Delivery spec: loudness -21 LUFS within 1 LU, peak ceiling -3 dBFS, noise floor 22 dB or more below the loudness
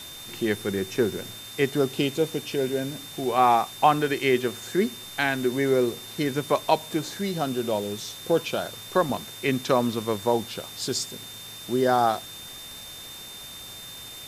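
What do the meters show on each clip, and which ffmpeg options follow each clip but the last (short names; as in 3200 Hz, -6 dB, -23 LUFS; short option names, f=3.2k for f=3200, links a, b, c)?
steady tone 3600 Hz; tone level -41 dBFS; noise floor -41 dBFS; noise floor target -48 dBFS; loudness -25.5 LUFS; peak -6.5 dBFS; loudness target -21.0 LUFS
-> -af "bandreject=f=3.6k:w=30"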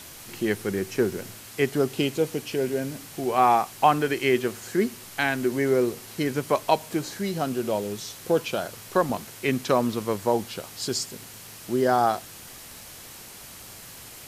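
steady tone none; noise floor -44 dBFS; noise floor target -48 dBFS
-> -af "afftdn=nr=6:nf=-44"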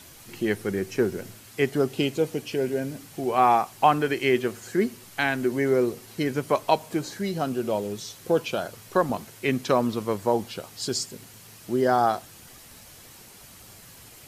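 noise floor -48 dBFS; loudness -26.0 LUFS; peak -7.0 dBFS; loudness target -21.0 LUFS
-> -af "volume=5dB,alimiter=limit=-3dB:level=0:latency=1"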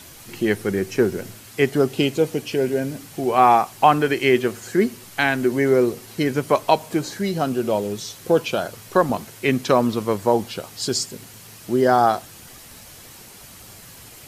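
loudness -21.0 LUFS; peak -3.0 dBFS; noise floor -43 dBFS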